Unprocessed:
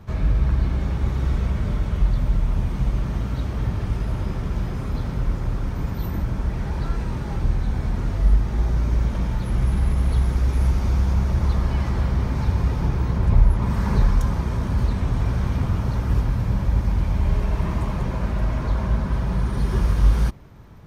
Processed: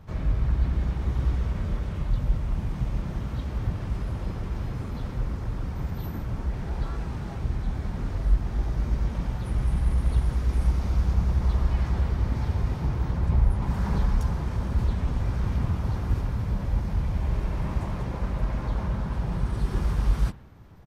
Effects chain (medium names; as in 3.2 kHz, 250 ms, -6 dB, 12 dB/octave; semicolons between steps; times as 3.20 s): spring tank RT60 1.1 s, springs 30 ms, chirp 25 ms, DRR 15.5 dB; harmony voices -3 st -2 dB; trim -7 dB